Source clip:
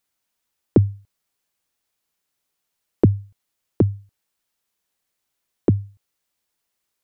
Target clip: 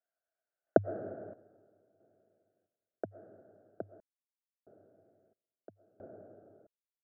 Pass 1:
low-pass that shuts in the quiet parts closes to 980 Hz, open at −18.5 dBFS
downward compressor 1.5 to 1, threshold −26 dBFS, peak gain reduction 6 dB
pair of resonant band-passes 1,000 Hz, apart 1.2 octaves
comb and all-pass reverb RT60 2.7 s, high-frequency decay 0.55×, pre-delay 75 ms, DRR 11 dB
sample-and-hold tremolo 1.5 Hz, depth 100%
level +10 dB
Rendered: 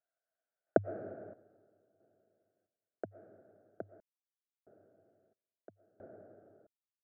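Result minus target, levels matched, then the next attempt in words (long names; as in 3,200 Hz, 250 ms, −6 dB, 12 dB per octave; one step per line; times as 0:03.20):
downward compressor: peak gain reduction +3 dB
low-pass that shuts in the quiet parts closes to 980 Hz, open at −18.5 dBFS
downward compressor 1.5 to 1, threshold −17 dBFS, peak gain reduction 3 dB
pair of resonant band-passes 1,000 Hz, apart 1.2 octaves
comb and all-pass reverb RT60 2.7 s, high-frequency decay 0.55×, pre-delay 75 ms, DRR 11 dB
sample-and-hold tremolo 1.5 Hz, depth 100%
level +10 dB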